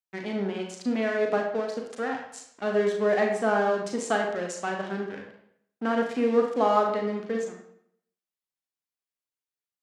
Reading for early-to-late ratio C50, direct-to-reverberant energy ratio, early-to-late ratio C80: 4.5 dB, 1.5 dB, 7.5 dB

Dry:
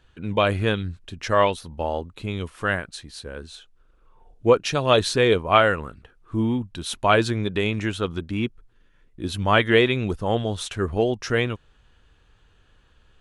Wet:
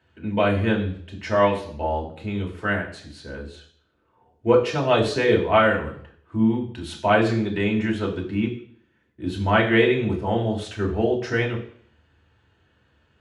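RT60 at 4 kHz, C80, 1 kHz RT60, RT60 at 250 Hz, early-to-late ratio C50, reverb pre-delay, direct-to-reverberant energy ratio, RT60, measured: 0.60 s, 12.5 dB, 0.60 s, 0.55 s, 9.0 dB, 3 ms, −2.0 dB, 0.60 s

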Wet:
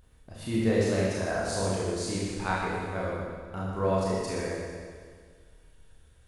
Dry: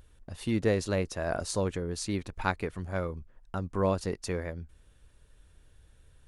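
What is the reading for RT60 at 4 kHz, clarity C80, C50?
1.8 s, −0.5 dB, −2.0 dB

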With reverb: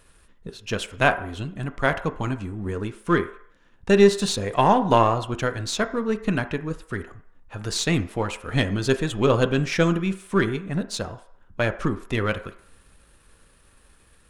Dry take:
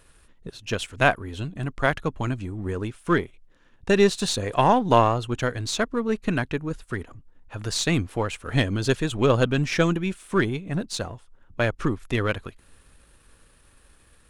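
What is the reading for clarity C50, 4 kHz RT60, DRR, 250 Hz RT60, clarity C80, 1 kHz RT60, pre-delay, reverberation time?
13.5 dB, 0.65 s, 8.5 dB, 0.40 s, 16.5 dB, 0.60 s, 3 ms, 0.60 s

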